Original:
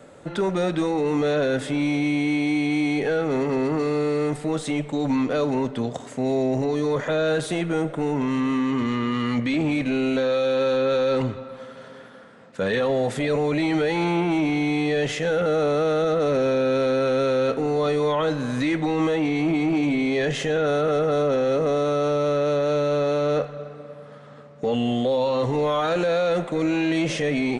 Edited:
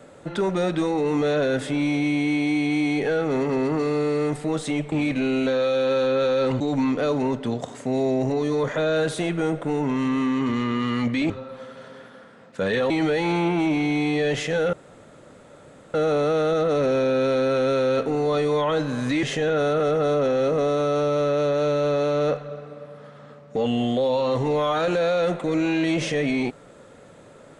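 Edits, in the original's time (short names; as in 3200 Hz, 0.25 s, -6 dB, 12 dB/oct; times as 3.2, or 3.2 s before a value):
9.62–11.3 move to 4.92
12.9–13.62 cut
15.45 insert room tone 1.21 s
18.74–20.31 cut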